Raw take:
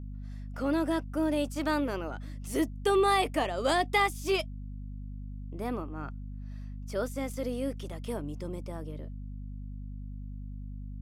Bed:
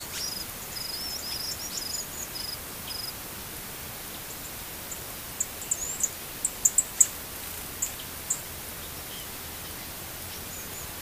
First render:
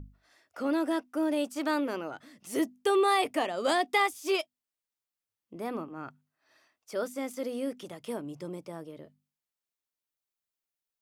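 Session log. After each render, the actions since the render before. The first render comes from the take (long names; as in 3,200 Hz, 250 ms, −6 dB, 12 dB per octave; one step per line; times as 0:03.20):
mains-hum notches 50/100/150/200/250 Hz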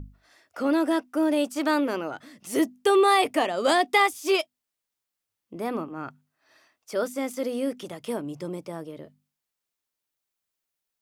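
level +5.5 dB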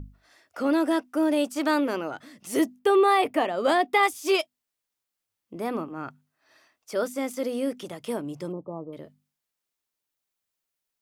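0:02.79–0:04.03: parametric band 7,000 Hz −10 dB 1.9 octaves
0:08.52–0:08.93: linear-phase brick-wall low-pass 1,300 Hz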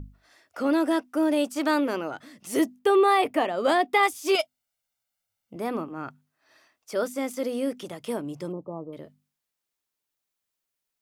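0:04.35–0:05.56: comb filter 1.4 ms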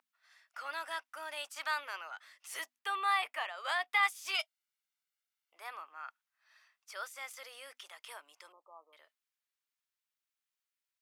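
Bessel high-pass filter 1,600 Hz, order 4
high-shelf EQ 3,500 Hz −10 dB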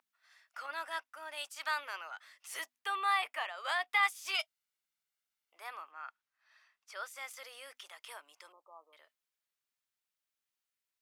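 0:00.66–0:01.69: multiband upward and downward expander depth 70%
0:05.91–0:07.08: high-shelf EQ 7,400 Hz −9 dB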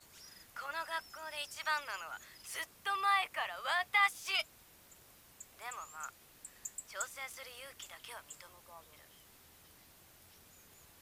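mix in bed −23 dB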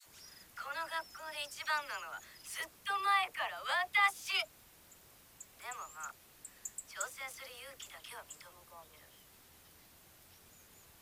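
all-pass dispersion lows, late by 55 ms, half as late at 730 Hz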